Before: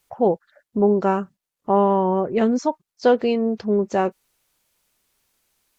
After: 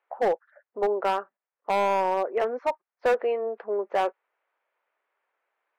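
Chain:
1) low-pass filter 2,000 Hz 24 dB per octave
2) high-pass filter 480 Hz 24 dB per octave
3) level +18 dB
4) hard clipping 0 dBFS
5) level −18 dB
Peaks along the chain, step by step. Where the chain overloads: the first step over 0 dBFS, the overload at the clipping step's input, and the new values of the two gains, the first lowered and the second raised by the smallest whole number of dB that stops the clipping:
−6.5, −8.0, +10.0, 0.0, −18.0 dBFS
step 3, 10.0 dB
step 3 +8 dB, step 5 −8 dB

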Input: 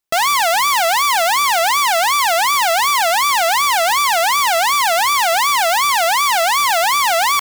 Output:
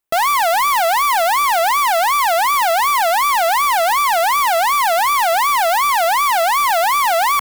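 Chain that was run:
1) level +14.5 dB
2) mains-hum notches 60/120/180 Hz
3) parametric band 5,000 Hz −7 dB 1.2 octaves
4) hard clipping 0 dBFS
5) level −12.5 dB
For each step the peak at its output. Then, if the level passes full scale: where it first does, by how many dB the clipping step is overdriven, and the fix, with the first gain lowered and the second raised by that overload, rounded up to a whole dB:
+4.5, +4.5, +4.0, 0.0, −12.5 dBFS
step 1, 4.0 dB
step 1 +10.5 dB, step 5 −8.5 dB

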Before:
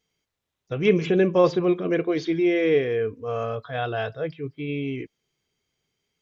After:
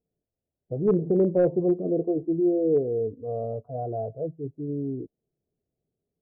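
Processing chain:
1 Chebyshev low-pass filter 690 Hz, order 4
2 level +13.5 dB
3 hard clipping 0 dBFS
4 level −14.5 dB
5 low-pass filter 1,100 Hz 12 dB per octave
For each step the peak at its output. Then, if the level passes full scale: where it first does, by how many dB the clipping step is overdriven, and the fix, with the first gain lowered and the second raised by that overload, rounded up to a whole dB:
−8.0, +5.5, 0.0, −14.5, −14.0 dBFS
step 2, 5.5 dB
step 2 +7.5 dB, step 4 −8.5 dB

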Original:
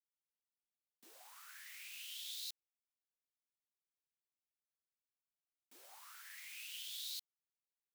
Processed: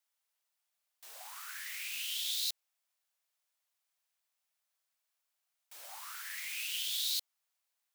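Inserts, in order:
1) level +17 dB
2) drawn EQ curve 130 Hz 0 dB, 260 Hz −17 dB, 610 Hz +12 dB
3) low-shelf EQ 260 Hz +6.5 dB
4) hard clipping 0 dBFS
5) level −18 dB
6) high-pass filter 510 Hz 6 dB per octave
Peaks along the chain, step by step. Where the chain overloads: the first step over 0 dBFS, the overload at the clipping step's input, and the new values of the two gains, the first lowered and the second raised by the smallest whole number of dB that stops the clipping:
−15.0, −3.0, −3.0, −3.0, −21.0, −21.0 dBFS
no step passes full scale

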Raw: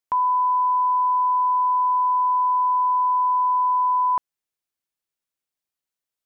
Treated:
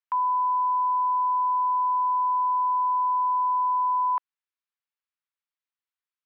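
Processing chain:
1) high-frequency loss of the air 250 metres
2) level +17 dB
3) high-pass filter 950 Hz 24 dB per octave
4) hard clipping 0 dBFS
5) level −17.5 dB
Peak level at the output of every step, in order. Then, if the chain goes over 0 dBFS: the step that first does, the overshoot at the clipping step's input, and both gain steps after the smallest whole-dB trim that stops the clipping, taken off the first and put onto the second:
−17.5, −0.5, −3.0, −3.0, −20.5 dBFS
no step passes full scale

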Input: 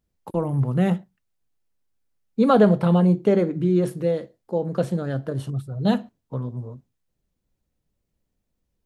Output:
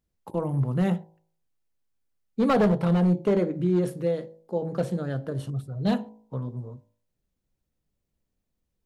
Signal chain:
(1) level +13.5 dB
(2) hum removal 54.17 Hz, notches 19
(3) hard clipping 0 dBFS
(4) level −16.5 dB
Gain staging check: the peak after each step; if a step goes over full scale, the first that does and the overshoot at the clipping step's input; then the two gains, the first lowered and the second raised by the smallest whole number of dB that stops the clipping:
+8.5, +8.5, 0.0, −16.5 dBFS
step 1, 8.5 dB
step 1 +4.5 dB, step 4 −7.5 dB

